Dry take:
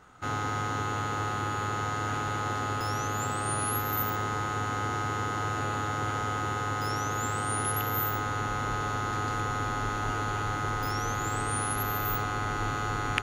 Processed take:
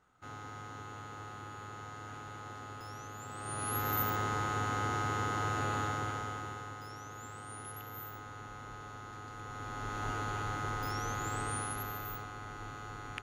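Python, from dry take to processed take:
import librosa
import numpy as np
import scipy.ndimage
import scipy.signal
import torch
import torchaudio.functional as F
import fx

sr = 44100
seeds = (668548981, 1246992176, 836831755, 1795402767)

y = fx.gain(x, sr, db=fx.line((3.24, -15.0), (3.86, -3.0), (5.83, -3.0), (6.88, -16.0), (9.33, -16.0), (10.05, -6.0), (11.48, -6.0), (12.33, -14.0)))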